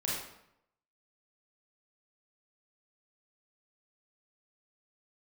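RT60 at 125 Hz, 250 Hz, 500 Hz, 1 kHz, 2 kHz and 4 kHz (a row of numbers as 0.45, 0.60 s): 0.85, 0.80, 0.75, 0.80, 0.70, 0.60 s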